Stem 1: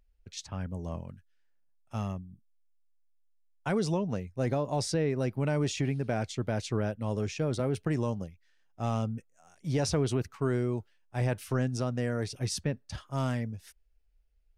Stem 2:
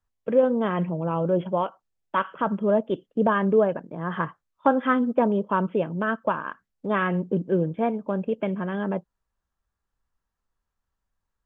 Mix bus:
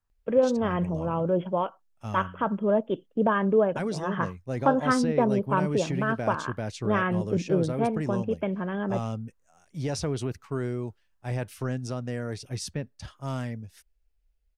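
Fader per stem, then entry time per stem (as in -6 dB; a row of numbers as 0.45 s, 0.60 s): -1.5 dB, -2.0 dB; 0.10 s, 0.00 s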